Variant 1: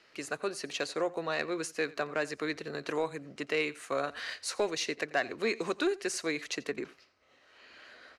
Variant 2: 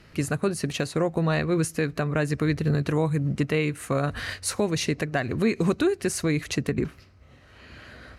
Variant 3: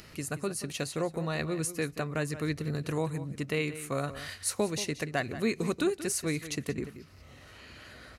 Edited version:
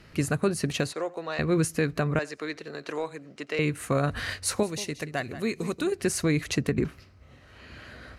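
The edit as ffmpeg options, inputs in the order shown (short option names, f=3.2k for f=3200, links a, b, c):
-filter_complex "[0:a]asplit=2[a][b];[1:a]asplit=4[c][d][e][f];[c]atrim=end=0.932[g];[a]atrim=start=0.928:end=1.392[h];[d]atrim=start=1.388:end=2.192[i];[b]atrim=start=2.188:end=3.592[j];[e]atrim=start=3.588:end=4.632[k];[2:a]atrim=start=4.628:end=5.922[l];[f]atrim=start=5.918[m];[g][h]acrossfade=d=0.004:c1=hsin:c2=hsin[n];[n][i]acrossfade=d=0.004:c1=hsin:c2=hsin[o];[o][j]acrossfade=d=0.004:c1=hsin:c2=hsin[p];[p][k]acrossfade=d=0.004:c1=hsin:c2=hsin[q];[q][l]acrossfade=d=0.004:c1=hsin:c2=hsin[r];[r][m]acrossfade=d=0.004:c1=hsin:c2=hsin"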